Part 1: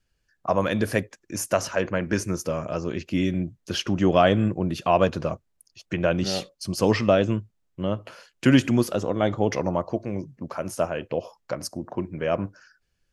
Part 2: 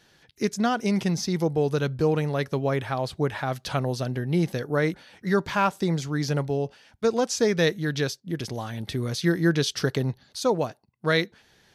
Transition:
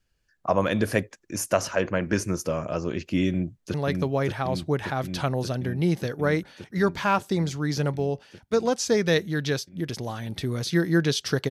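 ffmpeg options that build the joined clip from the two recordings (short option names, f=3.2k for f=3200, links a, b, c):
-filter_complex "[0:a]apad=whole_dur=11.5,atrim=end=11.5,atrim=end=3.742[a];[1:a]atrim=start=2.248:end=10.01[b];[a][b]acrossfade=d=0.004:c1=hsin:c2=hsin,asplit=2[c][d];[d]afade=t=in:st=3.29:d=0.01,afade=t=out:st=3.74:d=0.01,aecho=0:1:580|1160|1740|2320|2900|3480|4060|4640|5220|5800|6380|6960:0.668344|0.534675|0.42774|0.342192|0.273754|0.219003|0.175202|0.140162|0.11213|0.0897036|0.0717629|0.0574103[e];[c][e]amix=inputs=2:normalize=0"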